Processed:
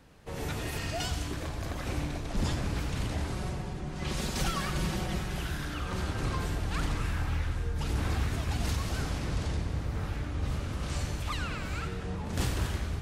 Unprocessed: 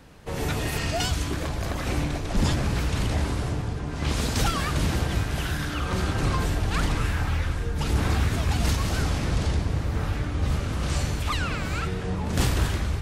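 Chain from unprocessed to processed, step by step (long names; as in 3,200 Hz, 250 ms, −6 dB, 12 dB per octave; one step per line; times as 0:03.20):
0:03.30–0:05.38: comb filter 5.4 ms
echo with a time of its own for lows and highs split 410 Hz, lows 276 ms, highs 91 ms, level −11 dB
level −7.5 dB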